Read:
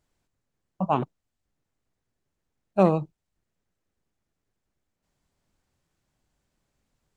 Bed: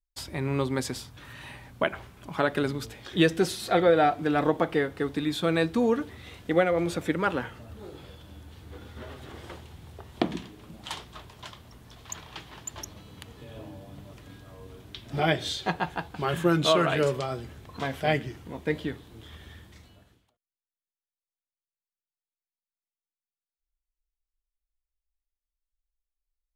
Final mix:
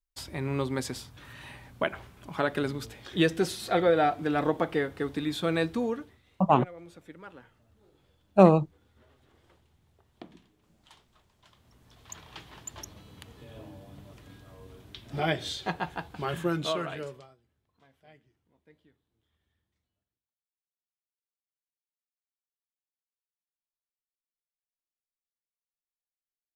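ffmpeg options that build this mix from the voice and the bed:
ffmpeg -i stem1.wav -i stem2.wav -filter_complex "[0:a]adelay=5600,volume=2.5dB[link_01];[1:a]volume=14.5dB,afade=type=out:start_time=5.63:duration=0.59:silence=0.125893,afade=type=in:start_time=11.41:duration=1:silence=0.141254,afade=type=out:start_time=16.21:duration=1.15:silence=0.0375837[link_02];[link_01][link_02]amix=inputs=2:normalize=0" out.wav

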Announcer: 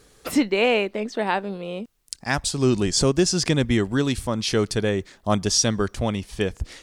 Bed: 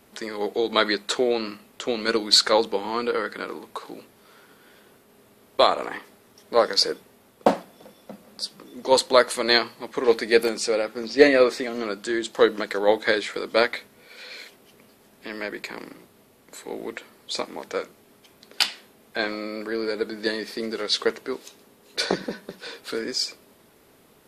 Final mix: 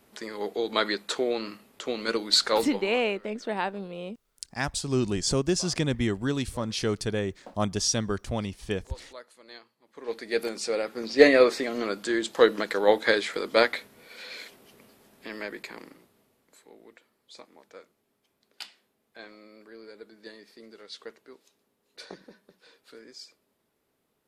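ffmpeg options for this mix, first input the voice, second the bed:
ffmpeg -i stem1.wav -i stem2.wav -filter_complex "[0:a]adelay=2300,volume=-6dB[link_01];[1:a]volume=22.5dB,afade=type=out:start_time=2.61:duration=0.42:silence=0.0668344,afade=type=in:start_time=9.85:duration=1.43:silence=0.0421697,afade=type=out:start_time=14.62:duration=2.11:silence=0.11885[link_02];[link_01][link_02]amix=inputs=2:normalize=0" out.wav

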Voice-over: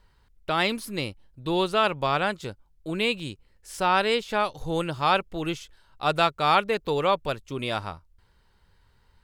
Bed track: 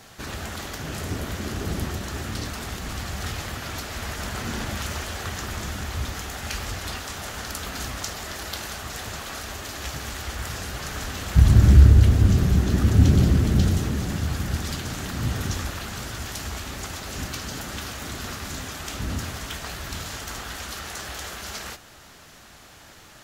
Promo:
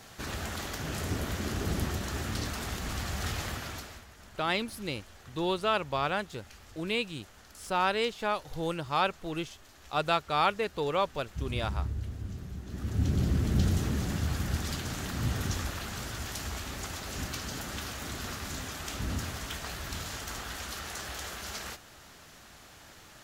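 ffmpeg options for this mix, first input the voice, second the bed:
ffmpeg -i stem1.wav -i stem2.wav -filter_complex "[0:a]adelay=3900,volume=-5.5dB[link_01];[1:a]volume=14dB,afade=type=out:start_time=3.48:duration=0.57:silence=0.11885,afade=type=in:start_time=12.64:duration=1.28:silence=0.141254[link_02];[link_01][link_02]amix=inputs=2:normalize=0" out.wav

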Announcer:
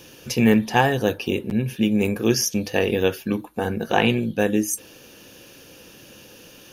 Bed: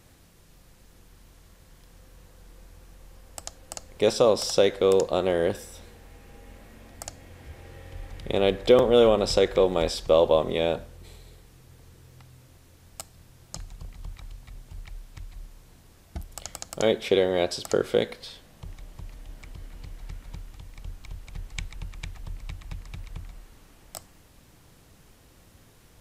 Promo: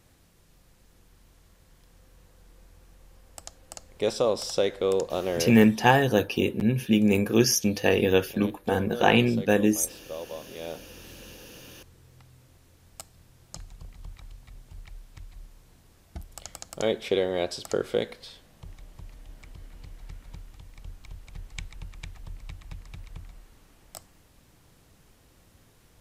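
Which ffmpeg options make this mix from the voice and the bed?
ffmpeg -i stem1.wav -i stem2.wav -filter_complex "[0:a]adelay=5100,volume=-1dB[link_01];[1:a]volume=10.5dB,afade=type=out:start_time=5.35:duration=0.5:silence=0.199526,afade=type=in:start_time=10.49:duration=0.74:silence=0.177828[link_02];[link_01][link_02]amix=inputs=2:normalize=0" out.wav

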